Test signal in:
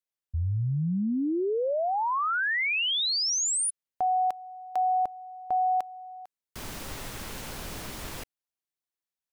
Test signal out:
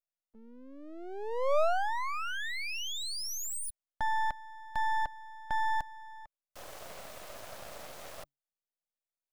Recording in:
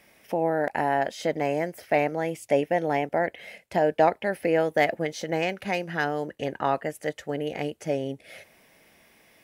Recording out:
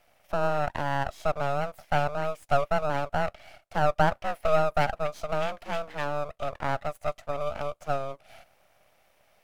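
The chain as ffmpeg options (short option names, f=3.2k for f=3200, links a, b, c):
-af "afreqshift=140,highpass=f=600:t=q:w=4.2,aeval=exprs='max(val(0),0)':c=same,volume=-6dB"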